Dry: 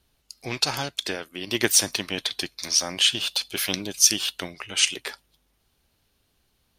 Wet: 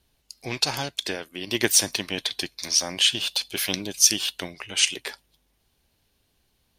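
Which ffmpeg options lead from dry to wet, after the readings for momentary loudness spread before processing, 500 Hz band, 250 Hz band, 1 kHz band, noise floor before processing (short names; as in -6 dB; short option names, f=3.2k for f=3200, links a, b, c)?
14 LU, 0.0 dB, 0.0 dB, -1.0 dB, -70 dBFS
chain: -af "equalizer=f=1.3k:t=o:w=0.24:g=-5.5"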